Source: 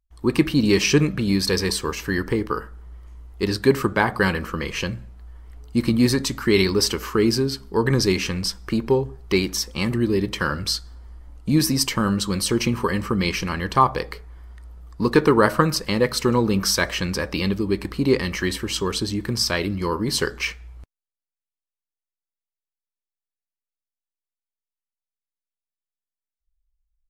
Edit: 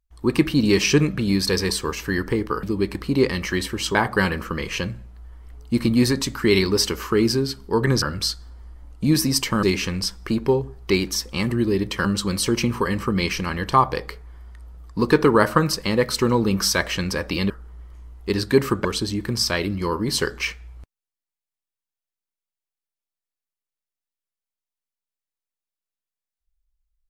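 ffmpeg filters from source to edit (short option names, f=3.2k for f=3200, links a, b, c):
-filter_complex "[0:a]asplit=8[a][b][c][d][e][f][g][h];[a]atrim=end=2.632[i];[b]atrim=start=17.528:end=18.852[j];[c]atrim=start=3.978:end=8.052[k];[d]atrim=start=10.468:end=12.082[l];[e]atrim=start=8.048:end=10.472[m];[f]atrim=start=12.078:end=17.532[n];[g]atrim=start=2.628:end=3.982[o];[h]atrim=start=18.848[p];[i][j]acrossfade=d=0.004:c1=hsin:c2=hsin[q];[q][k]acrossfade=d=0.004:c1=hsin:c2=hsin[r];[r][l]acrossfade=d=0.004:c1=hsin:c2=hsin[s];[s][m]acrossfade=d=0.004:c1=hsin:c2=hsin[t];[t][n]acrossfade=d=0.004:c1=hsin:c2=hsin[u];[u][o]acrossfade=d=0.004:c1=hsin:c2=hsin[v];[v][p]acrossfade=d=0.004:c1=hsin:c2=hsin"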